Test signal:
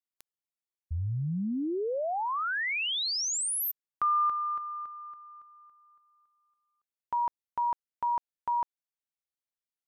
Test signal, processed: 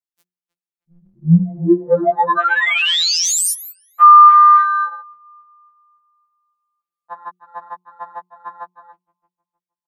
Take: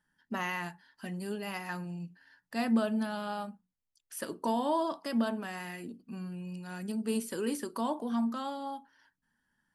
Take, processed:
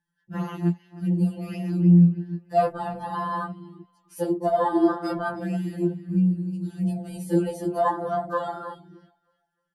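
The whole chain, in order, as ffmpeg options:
-filter_complex "[0:a]equalizer=f=210:t=o:w=1.8:g=13.5,bandreject=f=60:t=h:w=6,bandreject=f=120:t=h:w=6,bandreject=f=180:t=h:w=6,bandreject=f=240:t=h:w=6,bandreject=f=300:t=h:w=6,bandreject=f=360:t=h:w=6,dynaudnorm=f=260:g=11:m=1.5,lowshelf=f=370:g=-9.5,asplit=2[s0][s1];[s1]adelay=311,lowpass=f=2900:p=1,volume=0.251,asplit=2[s2][s3];[s3]adelay=311,lowpass=f=2900:p=1,volume=0.37,asplit=2[s4][s5];[s5]adelay=311,lowpass=f=2900:p=1,volume=0.37,asplit=2[s6][s7];[s7]adelay=311,lowpass=f=2900:p=1,volume=0.37[s8];[s2][s4][s6][s8]amix=inputs=4:normalize=0[s9];[s0][s9]amix=inputs=2:normalize=0,acontrast=53,afwtdn=0.0562,alimiter=level_in=4.47:limit=0.891:release=50:level=0:latency=1,afftfilt=real='re*2.83*eq(mod(b,8),0)':imag='im*2.83*eq(mod(b,8),0)':win_size=2048:overlap=0.75,volume=0.531"

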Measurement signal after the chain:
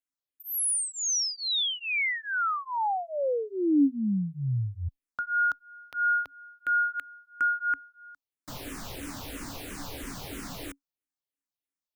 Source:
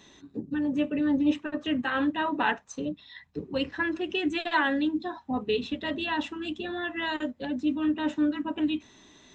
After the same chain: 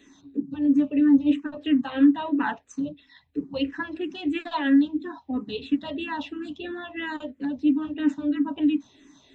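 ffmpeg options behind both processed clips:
-filter_complex "[0:a]equalizer=f=280:t=o:w=0.21:g=13.5,asplit=2[s0][s1];[s1]afreqshift=-3[s2];[s0][s2]amix=inputs=2:normalize=1"

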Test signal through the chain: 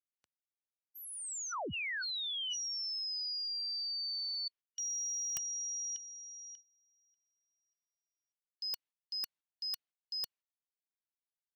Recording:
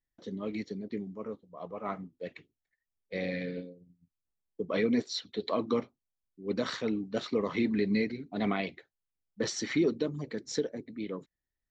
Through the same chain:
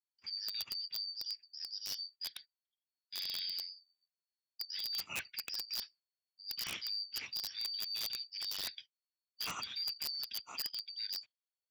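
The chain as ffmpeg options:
-af "afftfilt=real='real(if(lt(b,272),68*(eq(floor(b/68),0)*3+eq(floor(b/68),1)*2+eq(floor(b/68),2)*1+eq(floor(b/68),3)*0)+mod(b,68),b),0)':imag='imag(if(lt(b,272),68*(eq(floor(b/68),0)*3+eq(floor(b/68),1)*2+eq(floor(b/68),2)*1+eq(floor(b/68),3)*0)+mod(b,68),b),0)':win_size=2048:overlap=0.75,highpass=f=72:w=0.5412,highpass=f=72:w=1.3066,adynamicsmooth=sensitivity=1:basefreq=6900,agate=range=0.178:threshold=0.00178:ratio=16:detection=peak,adynamicequalizer=threshold=0.00398:dfrequency=2700:dqfactor=1:tfrequency=2700:tqfactor=1:attack=5:release=100:ratio=0.375:range=2.5:mode=boostabove:tftype=bell,areverse,acompressor=threshold=0.0158:ratio=16,areverse,aeval=exprs='(mod(33.5*val(0)+1,2)-1)/33.5':c=same"

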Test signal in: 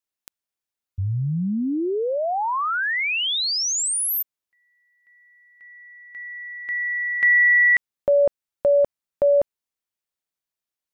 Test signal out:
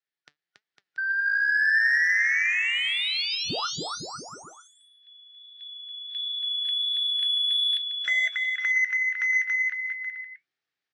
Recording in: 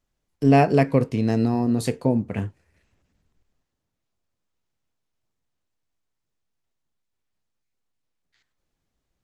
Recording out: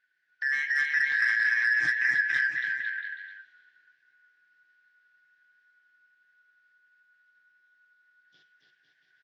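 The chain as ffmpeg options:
-af "afftfilt=real='real(if(lt(b,272),68*(eq(floor(b/68),0)*3+eq(floor(b/68),1)*0+eq(floor(b/68),2)*1+eq(floor(b/68),3)*2)+mod(b,68),b),0)':imag='imag(if(lt(b,272),68*(eq(floor(b/68),0)*3+eq(floor(b/68),1)*0+eq(floor(b/68),2)*1+eq(floor(b/68),3)*2)+mod(b,68),b),0)':win_size=2048:overlap=0.75,acompressor=threshold=0.0251:ratio=4:attack=1.9:release=101:knee=1:detection=rms,highpass=f=120:w=0.5412,highpass=f=120:w=1.3066,equalizer=f=220:t=q:w=4:g=-10,equalizer=f=560:t=q:w=4:g=-7,equalizer=f=1000:t=q:w=4:g=-9,equalizer=f=1800:t=q:w=4:g=9,lowpass=f=4900:w=0.5412,lowpass=f=4900:w=1.3066,aecho=1:1:280|504|683.2|826.6|941.2:0.631|0.398|0.251|0.158|0.1,asoftclip=type=tanh:threshold=0.106,flanger=delay=4:depth=2.9:regen=75:speed=1.4:shape=triangular,adynamicequalizer=threshold=0.00316:dfrequency=1100:dqfactor=2.7:tfrequency=1100:tqfactor=2.7:attack=5:release=100:ratio=0.3:range=1.5:mode=boostabove:tftype=bell,dynaudnorm=f=350:g=5:m=1.68,volume=1.41" -ar 22050 -c:a aac -b:a 32k

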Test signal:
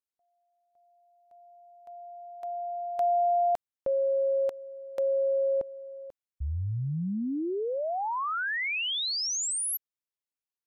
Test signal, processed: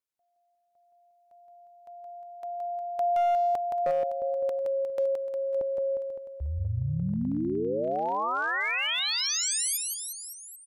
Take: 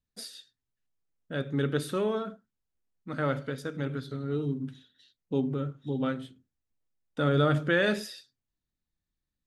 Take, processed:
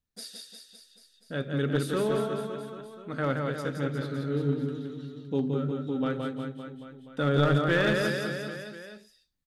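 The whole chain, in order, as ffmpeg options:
-af "aecho=1:1:170|357|562.7|789|1038:0.631|0.398|0.251|0.158|0.1,aeval=exprs='clip(val(0),-1,0.0794)':c=same"

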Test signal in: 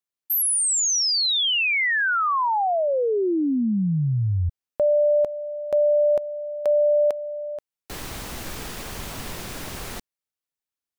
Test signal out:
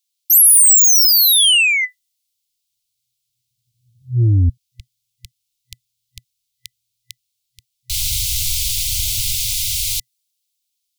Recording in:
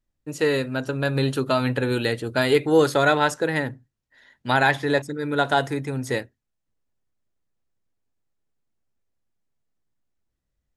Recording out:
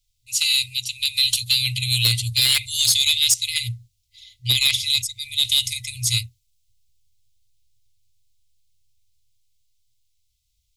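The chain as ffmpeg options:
-filter_complex "[0:a]afftfilt=real='re*(1-between(b*sr/4096,120,2000))':imag='im*(1-between(b*sr/4096,120,2000))':win_size=4096:overlap=0.75,acrossover=split=290|1200|3600[s0][s1][s2][s3];[s0]dynaudnorm=f=470:g=9:m=2.66[s4];[s4][s1][s2][s3]amix=inputs=4:normalize=0,highshelf=f=2600:t=q:w=1.5:g=10.5,aeval=exprs='0.596*sin(PI/2*2.24*val(0)/0.596)':c=same,adynamicequalizer=threshold=0.0794:dfrequency=6200:dqfactor=0.7:tfrequency=6200:tqfactor=0.7:attack=5:release=100:ratio=0.45:range=2:mode=boostabove:tftype=highshelf,volume=0.501"

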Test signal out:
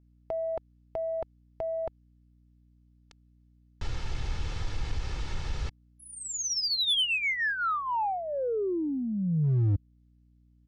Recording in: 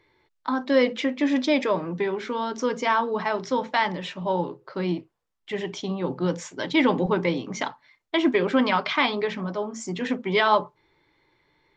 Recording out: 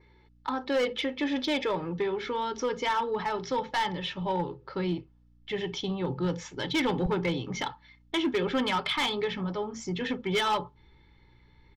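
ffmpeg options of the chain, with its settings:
-filter_complex "[0:a]lowpass=f=5900:w=0.5412,lowpass=f=5900:w=1.3066,adynamicequalizer=threshold=0.00398:dfrequency=3300:dqfactor=5.4:tfrequency=3300:tqfactor=5.4:attack=5:release=100:ratio=0.375:range=3.5:mode=boostabove:tftype=bell,aecho=1:1:2.3:0.5,asubboost=boost=4:cutoff=180,asplit=2[s0][s1];[s1]acompressor=threshold=0.0282:ratio=6,volume=0.841[s2];[s0][s2]amix=inputs=2:normalize=0,asoftclip=type=tanh:threshold=0.251,aeval=exprs='val(0)+0.002*(sin(2*PI*60*n/s)+sin(2*PI*2*60*n/s)/2+sin(2*PI*3*60*n/s)/3+sin(2*PI*4*60*n/s)/4+sin(2*PI*5*60*n/s)/5)':c=same,asoftclip=type=hard:threshold=0.158,volume=0.501"

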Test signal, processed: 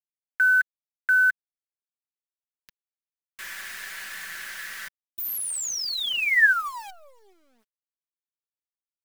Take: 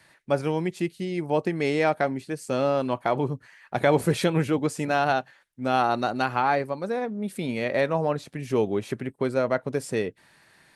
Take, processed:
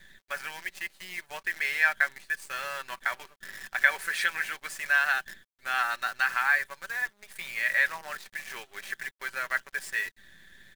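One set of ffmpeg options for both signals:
-af "highpass=f=1700:t=q:w=5.9,acrusher=bits=7:dc=4:mix=0:aa=0.000001,aecho=1:1:5.2:0.4,volume=0.631"

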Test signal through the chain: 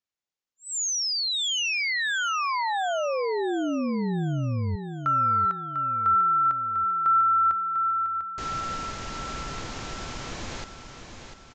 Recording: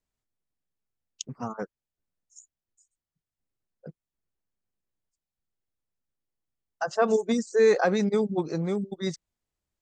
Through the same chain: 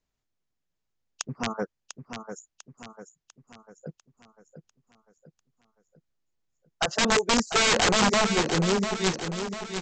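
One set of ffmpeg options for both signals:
-af "aresample=16000,aeval=exprs='(mod(10*val(0)+1,2)-1)/10':c=same,aresample=44100,aecho=1:1:697|1394|2091|2788|3485|4182:0.376|0.184|0.0902|0.0442|0.0217|0.0106,volume=1.5"

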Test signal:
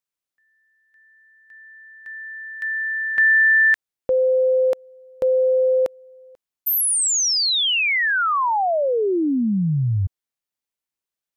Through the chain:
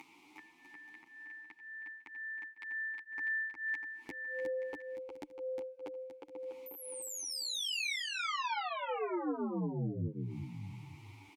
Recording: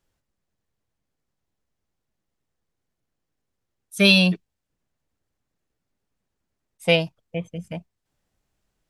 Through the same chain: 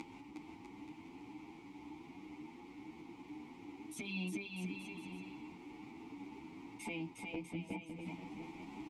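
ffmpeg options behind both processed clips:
-filter_complex "[0:a]acompressor=mode=upward:threshold=0.112:ratio=2.5:attack=33:release=131:knee=2.83:detection=peak,asplit=3[s0][s1][s2];[s0]bandpass=f=300:t=q:w=8,volume=1[s3];[s1]bandpass=f=870:t=q:w=8,volume=0.501[s4];[s2]bandpass=f=2240:t=q:w=8,volume=0.355[s5];[s3][s4][s5]amix=inputs=3:normalize=0,acompressor=threshold=0.00708:ratio=16:attack=0.65:release=187:knee=6:detection=rms,asplit=2[s6][s7];[s7]aecho=0:1:360|648|878.4|1063|1210:0.631|0.398|0.251|0.158|0.1[s8];[s6][s8]amix=inputs=2:normalize=0,asplit=2[s9][s10];[s10]adelay=9.5,afreqshift=2[s11];[s9][s11]amix=inputs=2:normalize=1,volume=3.55"

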